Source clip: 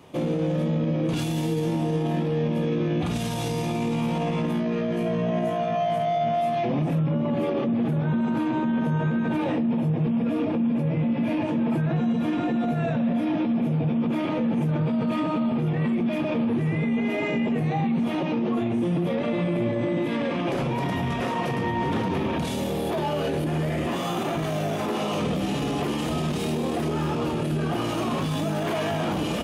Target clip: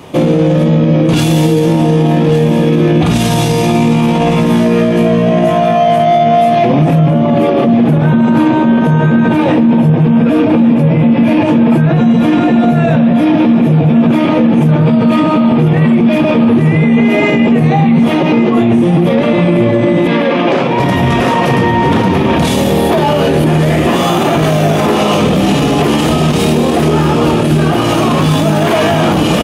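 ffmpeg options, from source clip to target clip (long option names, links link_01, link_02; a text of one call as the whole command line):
ffmpeg -i in.wav -filter_complex "[0:a]asettb=1/sr,asplit=3[link_01][link_02][link_03];[link_01]atrim=end=20.074[link_04];[link_02]atrim=start=20.07:end=20.8,asetpts=PTS-STARTPTS,afade=type=in:duration=0.004:curve=qsin,afade=type=out:start_time=0.726:duration=0.004:curve=qsin,highpass=240,lowpass=4800[link_05];[link_03]atrim=start=20.796[link_06];[link_04][link_05]acrossfade=duration=0.004:curve1=hsin:curve2=qsin[link_07];[link_07][link_06]acrossfade=duration=0.004:curve1=qsin:curve2=hsin,aecho=1:1:1156|2312|3468:0.251|0.0578|0.0133,alimiter=level_in=17.5dB:limit=-1dB:release=50:level=0:latency=1,volume=-1dB" out.wav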